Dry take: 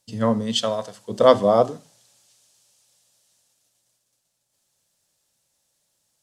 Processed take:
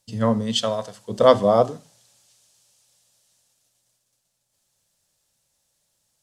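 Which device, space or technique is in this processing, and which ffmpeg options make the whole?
low shelf boost with a cut just above: -af "lowshelf=frequency=87:gain=7.5,equalizer=frequency=310:width_type=o:width=0.77:gain=-2"

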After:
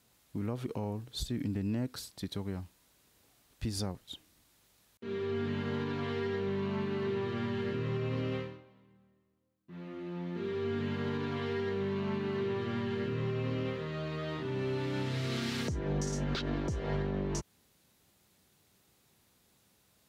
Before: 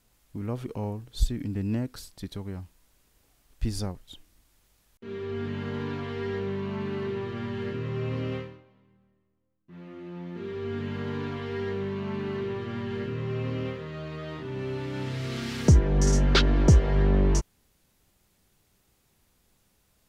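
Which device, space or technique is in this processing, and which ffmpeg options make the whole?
broadcast voice chain: -af "highpass=94,deesser=0.55,acompressor=threshold=-29dB:ratio=3,equalizer=frequency=3900:width_type=o:width=0.34:gain=3,alimiter=level_in=1dB:limit=-24dB:level=0:latency=1:release=113,volume=-1dB"

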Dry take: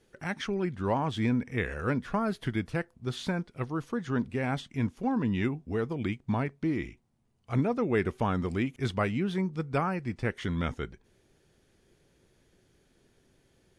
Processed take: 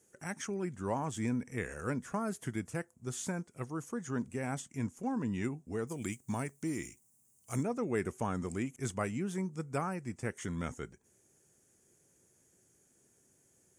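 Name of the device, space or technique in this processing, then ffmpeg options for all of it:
budget condenser microphone: -filter_complex "[0:a]highpass=88,highshelf=frequency=5400:width_type=q:width=3:gain=11,asettb=1/sr,asplit=3[link_01][link_02][link_03];[link_01]atrim=end=5.874[link_04];[link_02]atrim=start=5.87:end=7.63,asetpts=PTS-STARTPTS,afade=type=in:duration=0.004:curve=qsin,afade=type=out:start_time=1.756:duration=0.004:curve=qsin,aemphasis=mode=production:type=75fm[link_05];[link_03]atrim=start=7.626[link_06];[link_04][link_05]acrossfade=duration=0.004:curve1=hsin:curve2=qsin[link_07];[link_07][link_06]acrossfade=duration=0.004:curve1=qsin:curve2=hsin,volume=-6dB"

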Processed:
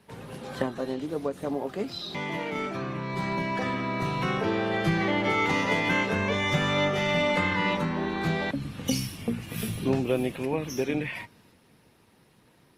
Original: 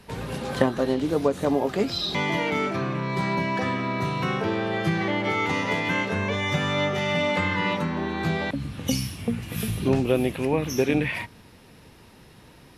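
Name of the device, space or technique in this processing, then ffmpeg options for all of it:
video call: -af "highpass=100,dynaudnorm=framelen=280:gausssize=21:maxgain=9dB,volume=-7.5dB" -ar 48000 -c:a libopus -b:a 24k

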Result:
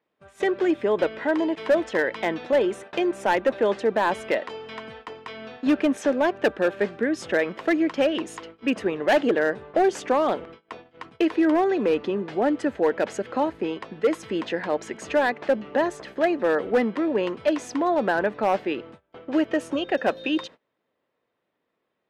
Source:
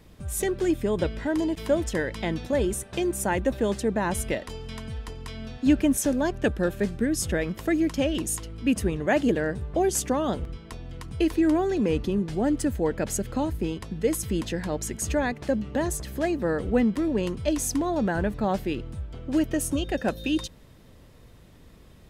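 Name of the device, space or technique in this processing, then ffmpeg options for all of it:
walkie-talkie: -af "highpass=430,lowpass=2500,asoftclip=type=hard:threshold=-21.5dB,agate=range=-24dB:threshold=-49dB:ratio=16:detection=peak,volume=7.5dB"

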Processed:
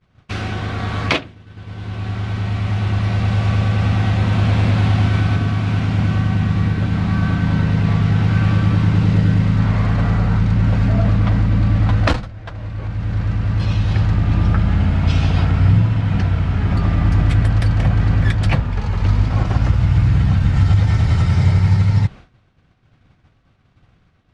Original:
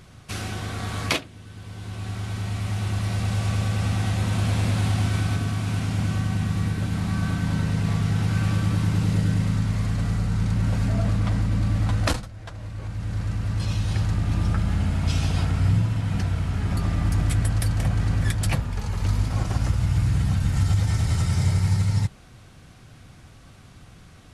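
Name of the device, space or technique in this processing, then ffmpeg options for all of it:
hearing-loss simulation: -filter_complex "[0:a]lowpass=3400,agate=range=-33dB:threshold=-36dB:ratio=3:detection=peak,asettb=1/sr,asplit=3[link_01][link_02][link_03];[link_01]atrim=end=9.594[link_04];[link_02]atrim=start=9.59:end=10.39,asetpts=PTS-STARTPTS,afade=type=in:duration=0.004:curve=qsin,afade=type=out:start_time=0.796:duration=0.004:curve=qsin,equalizer=frequency=870:width=0.53:gain=5.5[link_05];[link_03]atrim=start=10.386[link_06];[link_04][link_05]acrossfade=duration=0.004:curve1=hsin:curve2=qsin[link_07];[link_07][link_06]acrossfade=duration=0.004:curve1=qsin:curve2=hsin,volume=7.5dB"

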